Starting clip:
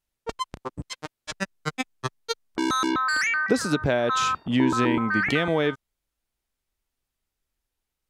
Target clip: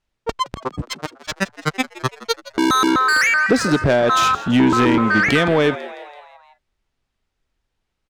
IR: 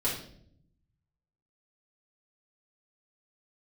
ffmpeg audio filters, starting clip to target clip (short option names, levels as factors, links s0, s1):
-filter_complex "[0:a]adynamicsmooth=sensitivity=4:basefreq=5400,asplit=6[s0][s1][s2][s3][s4][s5];[s1]adelay=166,afreqshift=96,volume=0.126[s6];[s2]adelay=332,afreqshift=192,volume=0.0733[s7];[s3]adelay=498,afreqshift=288,volume=0.0422[s8];[s4]adelay=664,afreqshift=384,volume=0.0245[s9];[s5]adelay=830,afreqshift=480,volume=0.0143[s10];[s0][s6][s7][s8][s9][s10]amix=inputs=6:normalize=0,asoftclip=type=tanh:threshold=0.15,volume=2.82"